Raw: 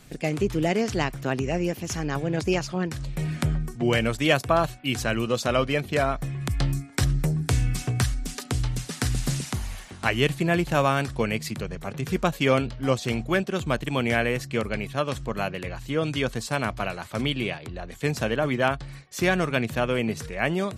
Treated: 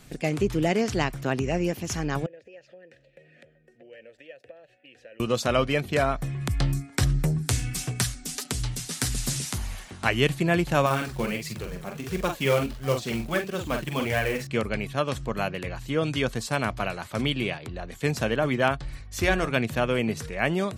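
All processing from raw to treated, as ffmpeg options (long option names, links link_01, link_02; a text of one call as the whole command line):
ffmpeg -i in.wav -filter_complex "[0:a]asettb=1/sr,asplit=3[link_01][link_02][link_03];[link_01]atrim=end=2.264[link_04];[link_02]atrim=start=2.26:end=5.2,asetpts=PTS-STARTPTS,afade=type=in:duration=0.004:curve=qsin,afade=type=out:start_time=2.936:duration=0.004:curve=qsin,acompressor=threshold=-31dB:ratio=12:attack=3.2:release=140:knee=1:detection=peak,asplit=3[link_05][link_06][link_07];[link_05]bandpass=frequency=530:width_type=q:width=8,volume=0dB[link_08];[link_06]bandpass=frequency=1840:width_type=q:width=8,volume=-6dB[link_09];[link_07]bandpass=frequency=2480:width_type=q:width=8,volume=-9dB[link_10];[link_08][link_09][link_10]amix=inputs=3:normalize=0[link_11];[link_03]atrim=start=5.196[link_12];[link_04][link_11]acrossfade=duration=0.004:curve1=hsin:curve2=qsin[link_13];[link_13][link_12]acrossfade=duration=0.004:curve1=qsin:curve2=hsin,asettb=1/sr,asplit=3[link_14][link_15][link_16];[link_14]atrim=end=7.384[link_17];[link_15]atrim=start=7.38:end=9.58,asetpts=PTS-STARTPTS,afade=type=in:duration=0.004:curve=qsin,afade=type=out:start_time=2.196:duration=0.004:curve=qsin,highshelf=frequency=3200:gain=10,flanger=delay=4.6:depth=9:regen=-29:speed=1.7:shape=sinusoidal[link_18];[link_16]atrim=start=9.576[link_19];[link_17][link_18]acrossfade=duration=0.004:curve1=hsin:curve2=qsin[link_20];[link_20][link_19]acrossfade=duration=0.004:curve1=qsin:curve2=hsin,asettb=1/sr,asplit=3[link_21][link_22][link_23];[link_21]atrim=end=10.864[link_24];[link_22]atrim=start=10.86:end=14.47,asetpts=PTS-STARTPTS,afade=type=in:duration=0.004:curve=qsin,afade=type=out:start_time=3.606:duration=0.004:curve=qsin,aecho=1:1:44|59:0.531|0.106,atrim=end_sample=159201,flanger=delay=1.7:depth=3.9:regen=-24:speed=1.5:shape=sinusoidal,acrusher=bits=4:mode=log:mix=0:aa=0.000001[link_25];[link_23]atrim=start=14.466[link_26];[link_24][link_25]acrossfade=duration=0.004:curve1=hsin:curve2=qsin[link_27];[link_27][link_26]acrossfade=duration=0.004:curve1=qsin:curve2=hsin,asettb=1/sr,asplit=3[link_28][link_29][link_30];[link_28]atrim=end=18.844[link_31];[link_29]atrim=start=18.84:end=19.49,asetpts=PTS-STARTPTS,afade=type=in:duration=0.004:curve=qsin,afade=type=out:start_time=0.646:duration=0.004:curve=qsin,bandreject=frequency=59.01:width_type=h:width=4,bandreject=frequency=118.02:width_type=h:width=4,bandreject=frequency=177.03:width_type=h:width=4,bandreject=frequency=236.04:width_type=h:width=4,bandreject=frequency=295.05:width_type=h:width=4,bandreject=frequency=354.06:width_type=h:width=4,bandreject=frequency=413.07:width_type=h:width=4,bandreject=frequency=472.08:width_type=h:width=4,bandreject=frequency=531.09:width_type=h:width=4,bandreject=frequency=590.1:width_type=h:width=4,bandreject=frequency=649.11:width_type=h:width=4,bandreject=frequency=708.12:width_type=h:width=4,bandreject=frequency=767.13:width_type=h:width=4,bandreject=frequency=826.14:width_type=h:width=4,bandreject=frequency=885.15:width_type=h:width=4,bandreject=frequency=944.16:width_type=h:width=4,bandreject=frequency=1003.17:width_type=h:width=4,bandreject=frequency=1062.18:width_type=h:width=4,bandreject=frequency=1121.19:width_type=h:width=4,bandreject=frequency=1180.2:width_type=h:width=4,bandreject=frequency=1239.21:width_type=h:width=4,bandreject=frequency=1298.22:width_type=h:width=4,bandreject=frequency=1357.23:width_type=h:width=4,bandreject=frequency=1416.24:width_type=h:width=4,bandreject=frequency=1475.25:width_type=h:width=4,bandreject=frequency=1534.26:width_type=h:width=4,bandreject=frequency=1593.27:width_type=h:width=4,bandreject=frequency=1652.28:width_type=h:width=4,aeval=exprs='val(0)+0.00355*(sin(2*PI*50*n/s)+sin(2*PI*2*50*n/s)/2+sin(2*PI*3*50*n/s)/3+sin(2*PI*4*50*n/s)/4+sin(2*PI*5*50*n/s)/5)':channel_layout=same,lowshelf=frequency=110:width_type=q:width=3:gain=7[link_32];[link_30]atrim=start=19.486[link_33];[link_31][link_32]acrossfade=duration=0.004:curve1=hsin:curve2=qsin[link_34];[link_34][link_33]acrossfade=duration=0.004:curve1=qsin:curve2=hsin" out.wav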